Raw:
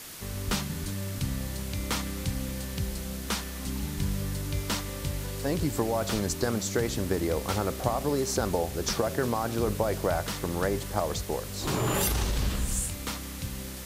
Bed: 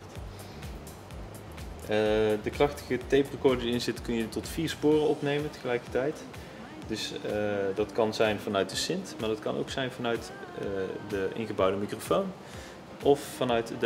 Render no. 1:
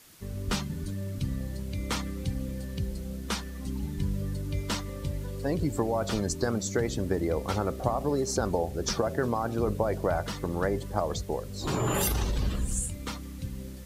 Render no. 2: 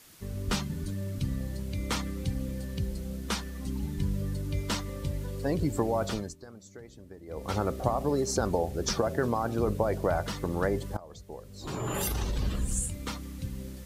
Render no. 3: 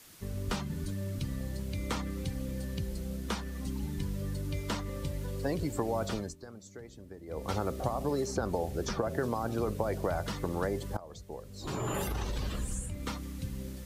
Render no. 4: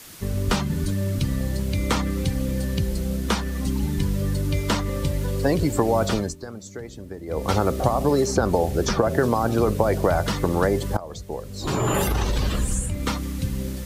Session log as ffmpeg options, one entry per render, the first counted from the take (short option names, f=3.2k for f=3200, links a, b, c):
-af "afftdn=nr=12:nf=-38"
-filter_complex "[0:a]asplit=4[a][b][c][d];[a]atrim=end=6.36,asetpts=PTS-STARTPTS,afade=t=out:st=6.03:d=0.33:silence=0.105925[e];[b]atrim=start=6.36:end=7.26,asetpts=PTS-STARTPTS,volume=-19.5dB[f];[c]atrim=start=7.26:end=10.97,asetpts=PTS-STARTPTS,afade=t=in:d=0.33:silence=0.105925,afade=t=out:st=3.706:d=0.004:c=hsin:silence=0.0841395[g];[d]atrim=start=10.97,asetpts=PTS-STARTPTS,afade=t=in:d=1.75:silence=0.0841395[h];[e][f][g][h]concat=n=4:v=0:a=1"
-filter_complex "[0:a]acrossover=split=430|1100|2700[a][b][c][d];[a]acompressor=threshold=-32dB:ratio=4[e];[b]acompressor=threshold=-34dB:ratio=4[f];[c]acompressor=threshold=-42dB:ratio=4[g];[d]acompressor=threshold=-43dB:ratio=4[h];[e][f][g][h]amix=inputs=4:normalize=0"
-af "volume=11.5dB"